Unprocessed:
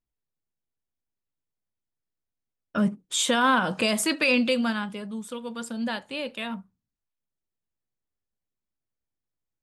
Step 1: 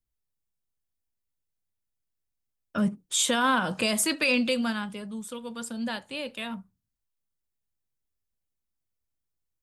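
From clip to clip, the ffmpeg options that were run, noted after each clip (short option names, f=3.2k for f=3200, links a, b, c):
-filter_complex "[0:a]highshelf=f=5.9k:g=7.5,acrossover=split=120|5300[a][b][c];[a]acontrast=79[d];[d][b][c]amix=inputs=3:normalize=0,volume=-3dB"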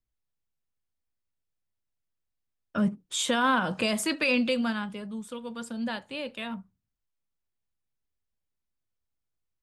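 -af "highshelf=f=6.1k:g=-10.5"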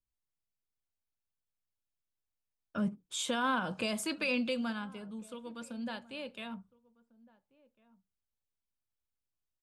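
-filter_complex "[0:a]bandreject=f=1.9k:w=9.1,asplit=2[a][b];[b]adelay=1399,volume=-23dB,highshelf=f=4k:g=-31.5[c];[a][c]amix=inputs=2:normalize=0,volume=-7dB"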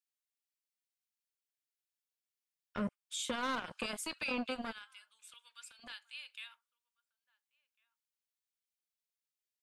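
-filter_complex "[0:a]acrossover=split=1500[a][b];[a]acrusher=bits=4:mix=0:aa=0.5[c];[c][b]amix=inputs=2:normalize=0,acompressor=threshold=-41dB:ratio=1.5"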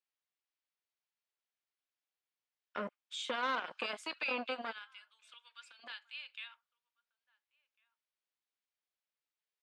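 -af "highpass=410,lowpass=3.8k,volume=2.5dB"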